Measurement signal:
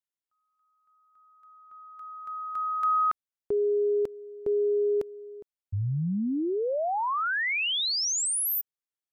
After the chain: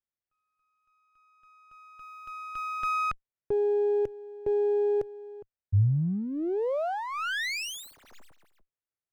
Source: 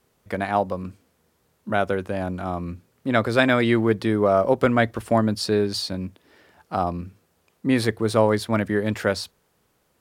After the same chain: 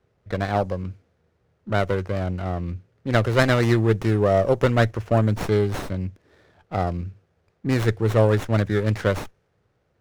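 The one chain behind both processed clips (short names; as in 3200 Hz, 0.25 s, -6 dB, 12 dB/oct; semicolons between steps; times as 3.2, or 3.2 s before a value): low-pass opened by the level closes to 2300 Hz, open at -15 dBFS; fifteen-band EQ 100 Hz +7 dB, 250 Hz -7 dB, 1000 Hz -8 dB, 6300 Hz +7 dB; running maximum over 9 samples; gain +1.5 dB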